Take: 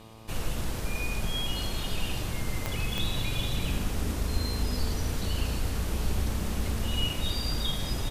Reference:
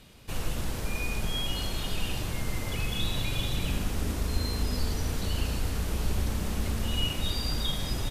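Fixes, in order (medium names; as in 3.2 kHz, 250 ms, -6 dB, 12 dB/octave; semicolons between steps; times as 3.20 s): de-click; de-hum 111.4 Hz, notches 11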